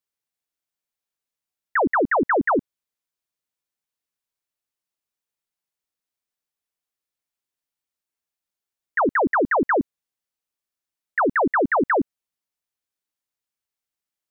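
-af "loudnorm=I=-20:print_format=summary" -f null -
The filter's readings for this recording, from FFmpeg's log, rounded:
Input Integrated:    -21.4 LUFS
Input True Peak:     -15.2 dBTP
Input LRA:             1.7 LU
Input Threshold:     -31.7 LUFS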